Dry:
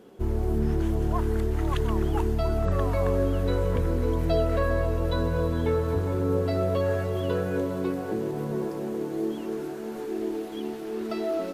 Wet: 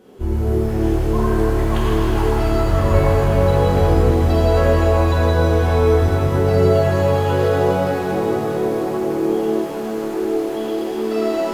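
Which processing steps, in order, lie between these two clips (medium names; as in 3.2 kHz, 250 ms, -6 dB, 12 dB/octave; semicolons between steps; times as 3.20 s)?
pitch-shifted reverb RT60 3.2 s, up +7 st, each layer -8 dB, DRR -7.5 dB; trim +1 dB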